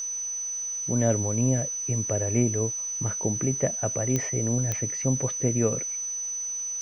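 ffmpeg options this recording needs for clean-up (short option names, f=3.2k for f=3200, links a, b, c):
-af "adeclick=t=4,bandreject=f=6k:w=30,afwtdn=0.0025"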